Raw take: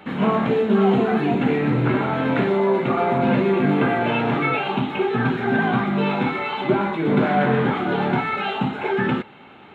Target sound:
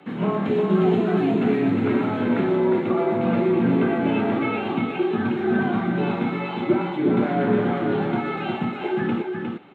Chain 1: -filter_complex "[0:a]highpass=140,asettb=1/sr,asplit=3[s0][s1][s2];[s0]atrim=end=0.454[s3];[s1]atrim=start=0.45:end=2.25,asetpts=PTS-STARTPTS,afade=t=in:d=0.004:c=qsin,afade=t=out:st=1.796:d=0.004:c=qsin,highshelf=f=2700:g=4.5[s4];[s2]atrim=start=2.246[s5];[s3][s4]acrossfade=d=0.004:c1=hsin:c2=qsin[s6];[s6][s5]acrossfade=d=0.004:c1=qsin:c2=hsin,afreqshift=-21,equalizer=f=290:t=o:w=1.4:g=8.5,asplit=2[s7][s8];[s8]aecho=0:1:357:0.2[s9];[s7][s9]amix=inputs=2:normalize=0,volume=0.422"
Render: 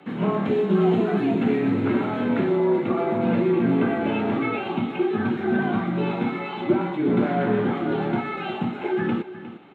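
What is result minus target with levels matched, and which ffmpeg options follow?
echo-to-direct -9 dB
-filter_complex "[0:a]highpass=140,asettb=1/sr,asplit=3[s0][s1][s2];[s0]atrim=end=0.454[s3];[s1]atrim=start=0.45:end=2.25,asetpts=PTS-STARTPTS,afade=t=in:d=0.004:c=qsin,afade=t=out:st=1.796:d=0.004:c=qsin,highshelf=f=2700:g=4.5[s4];[s2]atrim=start=2.246[s5];[s3][s4]acrossfade=d=0.004:c1=hsin:c2=qsin[s6];[s6][s5]acrossfade=d=0.004:c1=qsin:c2=hsin,afreqshift=-21,equalizer=f=290:t=o:w=1.4:g=8.5,asplit=2[s7][s8];[s8]aecho=0:1:357:0.562[s9];[s7][s9]amix=inputs=2:normalize=0,volume=0.422"

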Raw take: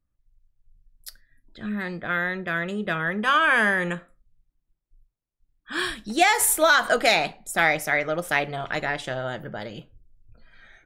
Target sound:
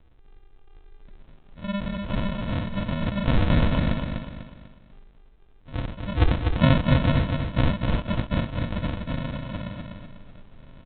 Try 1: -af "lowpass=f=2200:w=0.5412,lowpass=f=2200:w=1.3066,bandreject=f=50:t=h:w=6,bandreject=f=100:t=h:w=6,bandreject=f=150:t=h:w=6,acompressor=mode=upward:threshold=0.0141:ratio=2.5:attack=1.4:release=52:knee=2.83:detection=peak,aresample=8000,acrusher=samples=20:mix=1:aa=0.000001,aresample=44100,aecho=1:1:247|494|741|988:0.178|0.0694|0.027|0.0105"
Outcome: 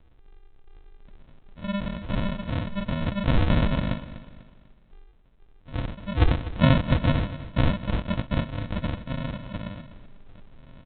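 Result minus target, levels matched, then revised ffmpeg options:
echo-to-direct -10 dB
-af "lowpass=f=2200:w=0.5412,lowpass=f=2200:w=1.3066,bandreject=f=50:t=h:w=6,bandreject=f=100:t=h:w=6,bandreject=f=150:t=h:w=6,acompressor=mode=upward:threshold=0.0141:ratio=2.5:attack=1.4:release=52:knee=2.83:detection=peak,aresample=8000,acrusher=samples=20:mix=1:aa=0.000001,aresample=44100,aecho=1:1:247|494|741|988|1235:0.562|0.219|0.0855|0.0334|0.013"

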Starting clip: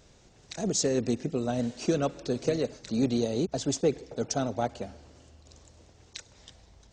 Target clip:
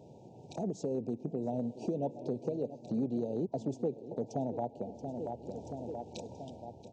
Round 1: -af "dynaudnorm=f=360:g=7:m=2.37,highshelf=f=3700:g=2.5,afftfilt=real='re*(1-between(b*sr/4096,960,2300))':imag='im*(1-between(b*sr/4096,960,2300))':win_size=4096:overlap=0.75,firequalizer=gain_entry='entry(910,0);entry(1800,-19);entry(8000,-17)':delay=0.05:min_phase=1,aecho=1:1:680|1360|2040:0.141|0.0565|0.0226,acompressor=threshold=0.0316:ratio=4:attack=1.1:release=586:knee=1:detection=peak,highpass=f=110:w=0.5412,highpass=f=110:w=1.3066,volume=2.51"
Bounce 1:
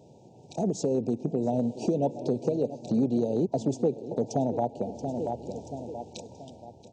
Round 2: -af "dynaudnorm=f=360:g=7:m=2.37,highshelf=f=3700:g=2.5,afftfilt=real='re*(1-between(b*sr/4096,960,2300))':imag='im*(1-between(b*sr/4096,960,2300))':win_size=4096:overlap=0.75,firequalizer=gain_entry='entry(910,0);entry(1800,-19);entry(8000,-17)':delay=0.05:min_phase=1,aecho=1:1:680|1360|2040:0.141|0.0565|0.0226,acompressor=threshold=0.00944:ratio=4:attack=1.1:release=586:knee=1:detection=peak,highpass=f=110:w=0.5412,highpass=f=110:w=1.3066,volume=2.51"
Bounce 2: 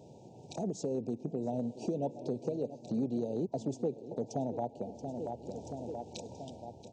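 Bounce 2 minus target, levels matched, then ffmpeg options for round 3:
8 kHz band +5.5 dB
-af "dynaudnorm=f=360:g=7:m=2.37,highshelf=f=3700:g=-5,afftfilt=real='re*(1-between(b*sr/4096,960,2300))':imag='im*(1-between(b*sr/4096,960,2300))':win_size=4096:overlap=0.75,firequalizer=gain_entry='entry(910,0);entry(1800,-19);entry(8000,-17)':delay=0.05:min_phase=1,aecho=1:1:680|1360|2040:0.141|0.0565|0.0226,acompressor=threshold=0.00944:ratio=4:attack=1.1:release=586:knee=1:detection=peak,highpass=f=110:w=0.5412,highpass=f=110:w=1.3066,volume=2.51"

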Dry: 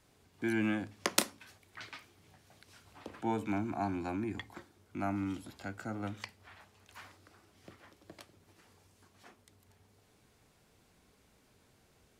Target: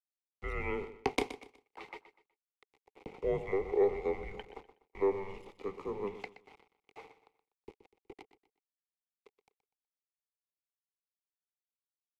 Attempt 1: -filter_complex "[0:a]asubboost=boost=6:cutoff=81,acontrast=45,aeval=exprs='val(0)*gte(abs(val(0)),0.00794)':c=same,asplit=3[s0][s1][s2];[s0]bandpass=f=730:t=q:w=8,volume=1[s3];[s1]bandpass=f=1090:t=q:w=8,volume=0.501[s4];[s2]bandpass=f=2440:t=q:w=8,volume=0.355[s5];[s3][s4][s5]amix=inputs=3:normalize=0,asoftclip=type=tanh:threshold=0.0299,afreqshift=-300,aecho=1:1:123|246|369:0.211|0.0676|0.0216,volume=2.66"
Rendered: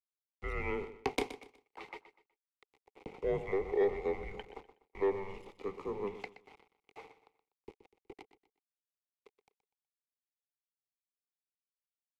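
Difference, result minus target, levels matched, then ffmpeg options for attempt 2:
saturation: distortion +9 dB
-filter_complex "[0:a]asubboost=boost=6:cutoff=81,acontrast=45,aeval=exprs='val(0)*gte(abs(val(0)),0.00794)':c=same,asplit=3[s0][s1][s2];[s0]bandpass=f=730:t=q:w=8,volume=1[s3];[s1]bandpass=f=1090:t=q:w=8,volume=0.501[s4];[s2]bandpass=f=2440:t=q:w=8,volume=0.355[s5];[s3][s4][s5]amix=inputs=3:normalize=0,asoftclip=type=tanh:threshold=0.0631,afreqshift=-300,aecho=1:1:123|246|369:0.211|0.0676|0.0216,volume=2.66"

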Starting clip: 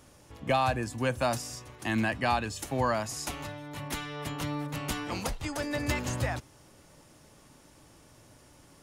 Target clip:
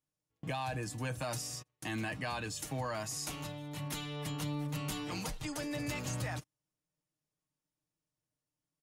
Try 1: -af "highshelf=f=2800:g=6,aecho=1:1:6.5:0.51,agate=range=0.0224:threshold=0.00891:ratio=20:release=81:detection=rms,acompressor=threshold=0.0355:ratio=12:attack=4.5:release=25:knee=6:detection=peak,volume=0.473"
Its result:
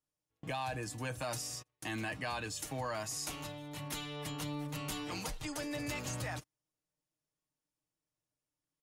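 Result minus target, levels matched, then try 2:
125 Hz band -3.0 dB
-af "highshelf=f=2800:g=6,aecho=1:1:6.5:0.51,agate=range=0.0224:threshold=0.00891:ratio=20:release=81:detection=rms,acompressor=threshold=0.0355:ratio=12:attack=4.5:release=25:knee=6:detection=peak,equalizer=f=160:w=1.2:g=5,volume=0.473"

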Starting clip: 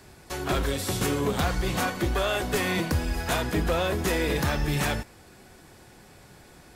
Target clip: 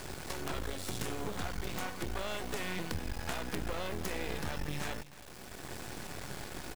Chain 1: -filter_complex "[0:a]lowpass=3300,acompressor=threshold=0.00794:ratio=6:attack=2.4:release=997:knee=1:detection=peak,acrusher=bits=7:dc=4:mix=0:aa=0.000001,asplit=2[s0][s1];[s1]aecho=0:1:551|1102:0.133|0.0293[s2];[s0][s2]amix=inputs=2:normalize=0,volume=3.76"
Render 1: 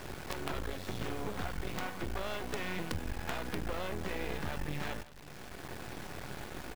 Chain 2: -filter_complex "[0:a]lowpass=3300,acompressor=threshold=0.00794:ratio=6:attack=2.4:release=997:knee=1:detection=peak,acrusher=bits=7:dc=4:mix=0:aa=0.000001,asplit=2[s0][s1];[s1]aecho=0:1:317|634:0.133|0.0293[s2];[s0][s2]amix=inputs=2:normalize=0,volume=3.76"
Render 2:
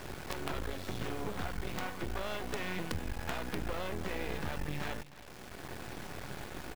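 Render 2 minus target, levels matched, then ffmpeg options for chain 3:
8 kHz band -5.0 dB
-filter_complex "[0:a]lowpass=11000,acompressor=threshold=0.00794:ratio=6:attack=2.4:release=997:knee=1:detection=peak,acrusher=bits=7:dc=4:mix=0:aa=0.000001,asplit=2[s0][s1];[s1]aecho=0:1:317|634:0.133|0.0293[s2];[s0][s2]amix=inputs=2:normalize=0,volume=3.76"

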